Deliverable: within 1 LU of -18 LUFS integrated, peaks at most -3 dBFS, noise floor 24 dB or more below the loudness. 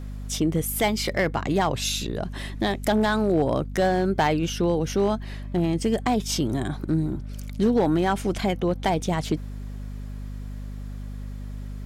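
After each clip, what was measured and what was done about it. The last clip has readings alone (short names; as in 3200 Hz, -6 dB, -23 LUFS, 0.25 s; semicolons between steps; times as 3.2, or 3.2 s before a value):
clipped 0.7%; flat tops at -14.0 dBFS; hum 50 Hz; harmonics up to 250 Hz; hum level -32 dBFS; loudness -24.5 LUFS; peak -14.0 dBFS; loudness target -18.0 LUFS
-> clip repair -14 dBFS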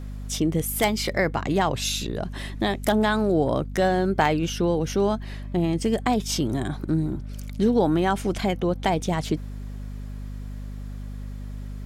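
clipped 0.0%; hum 50 Hz; harmonics up to 250 Hz; hum level -32 dBFS
-> notches 50/100/150/200/250 Hz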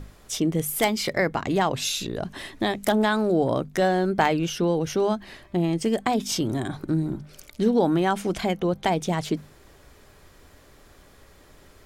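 hum none; loudness -25.0 LUFS; peak -5.0 dBFS; loudness target -18.0 LUFS
-> gain +7 dB; limiter -3 dBFS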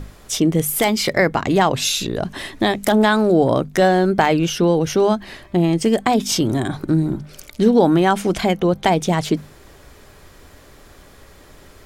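loudness -18.0 LUFS; peak -3.0 dBFS; noise floor -46 dBFS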